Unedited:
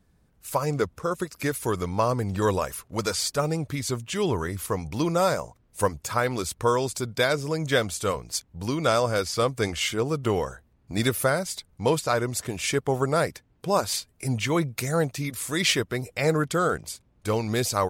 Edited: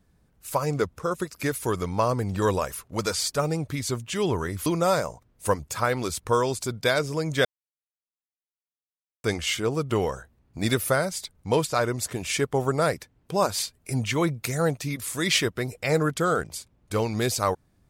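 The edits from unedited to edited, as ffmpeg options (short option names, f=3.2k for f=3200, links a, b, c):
-filter_complex "[0:a]asplit=4[a][b][c][d];[a]atrim=end=4.662[e];[b]atrim=start=4.998:end=7.79,asetpts=PTS-STARTPTS,afade=t=out:st=2.788:d=0.004:c=hsin[f];[c]atrim=start=7.79:end=9.58,asetpts=PTS-STARTPTS,volume=0[g];[d]atrim=start=9.58,asetpts=PTS-STARTPTS,afade=t=in:d=0.004:c=hsin[h];[f][g][h]concat=n=3:v=0:a=1[i];[e][i]acrossfade=d=0.004:c1=hsin:c2=hsin"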